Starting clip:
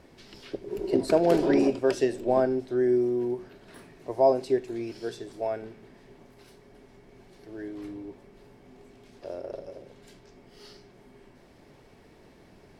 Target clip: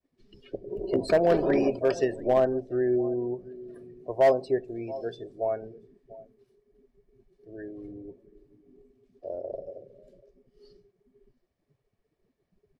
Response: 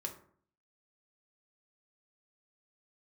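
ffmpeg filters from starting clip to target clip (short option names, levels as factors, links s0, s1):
-filter_complex "[0:a]asplit=2[s0][s1];[s1]aecho=0:1:687:0.126[s2];[s0][s2]amix=inputs=2:normalize=0,agate=range=0.0224:threshold=0.00316:ratio=3:detection=peak,afftdn=nr=23:nf=-42,aecho=1:1:1.7:0.34,asoftclip=type=hard:threshold=0.188"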